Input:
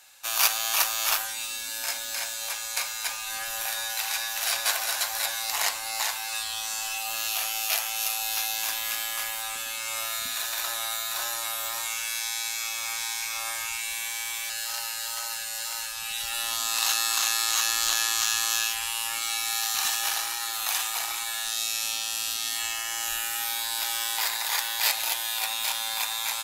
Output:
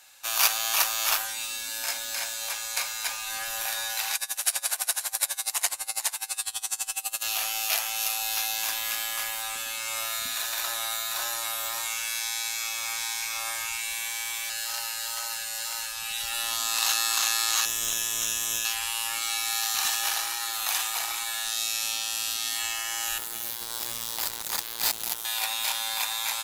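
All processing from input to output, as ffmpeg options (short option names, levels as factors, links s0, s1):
-filter_complex "[0:a]asettb=1/sr,asplit=3[s0][s1][s2];[s0]atrim=end=4.154[s3];[s1]atrim=start=4.15:end=7.23,asetpts=PTS-STARTPTS,afade=t=in:d=0.004:c=qsin,afade=t=out:st=3.076:d=0.004:c=qsin,equalizer=f=9500:t=o:w=0.85:g=12,aeval=exprs='val(0)*pow(10,-24*(0.5-0.5*cos(2*PI*12*n/s))/20)':c=same[s4];[s2]atrim=start=7.226[s5];[s3][s4]acrossfade=d=0.004:c1=hsin:c2=qsin[s6];[s6][s5]acrossfade=d=0.004:c1=qsin:c2=hsin,asettb=1/sr,asplit=3[s7][s8][s9];[s7]atrim=end=17.654[s10];[s8]atrim=start=17.65:end=18.65,asetpts=PTS-STARTPTS,afade=t=in:d=0.004:c=qsin,afade=t=out:st=0.996:d=0.004:c=qsin,asuperstop=centerf=4500:order=4:qfactor=3.5,acrossover=split=230|3000[s11][s12][s13];[s12]acompressor=threshold=0.0126:ratio=6:attack=3.2:release=140:knee=2.83:detection=peak[s14];[s11][s14][s13]amix=inputs=3:normalize=0,aeval=exprs='clip(val(0),-1,0.1)':c=same[s15];[s9]atrim=start=18.646[s16];[s10][s15]acrossfade=d=0.004:c1=hsin:c2=qsin[s17];[s17][s16]acrossfade=d=0.004:c1=qsin:c2=hsin,asettb=1/sr,asplit=3[s18][s19][s20];[s18]atrim=end=23.184[s21];[s19]atrim=start=23.18:end=25.25,asetpts=PTS-STARTPTS,afade=t=in:d=0.004:c=qsin,afade=t=out:st=2.066:d=0.004:c=qsin,equalizer=f=2300:t=o:w=0.97:g=-8.5,acrusher=bits=3:mix=0:aa=0.5[s22];[s20]atrim=start=25.246[s23];[s21][s22]acrossfade=d=0.004:c1=hsin:c2=qsin[s24];[s24][s23]acrossfade=d=0.004:c1=qsin:c2=hsin"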